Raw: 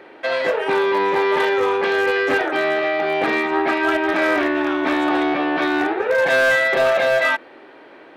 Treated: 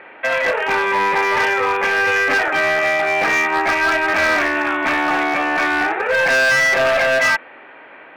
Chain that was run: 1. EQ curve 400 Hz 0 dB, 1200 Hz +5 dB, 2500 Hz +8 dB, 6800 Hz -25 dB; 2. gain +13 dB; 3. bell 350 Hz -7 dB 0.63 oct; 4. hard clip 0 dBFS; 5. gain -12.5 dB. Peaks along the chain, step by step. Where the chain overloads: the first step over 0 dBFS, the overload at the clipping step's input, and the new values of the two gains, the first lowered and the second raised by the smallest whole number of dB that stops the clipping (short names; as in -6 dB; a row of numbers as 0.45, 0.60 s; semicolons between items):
-3.0, +10.0, +10.0, 0.0, -12.5 dBFS; step 2, 10.0 dB; step 2 +3 dB, step 5 -2.5 dB